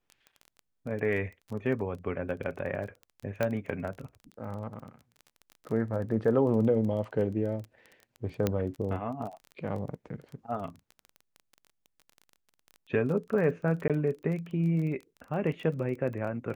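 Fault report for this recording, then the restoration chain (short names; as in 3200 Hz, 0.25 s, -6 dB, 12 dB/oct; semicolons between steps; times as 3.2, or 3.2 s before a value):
crackle 22/s -37 dBFS
3.43 pop -16 dBFS
8.47 pop -13 dBFS
13.88–13.9 gap 17 ms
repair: de-click; interpolate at 13.88, 17 ms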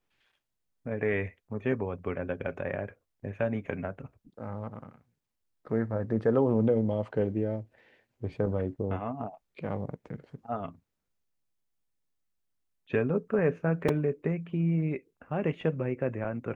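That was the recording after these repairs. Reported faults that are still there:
none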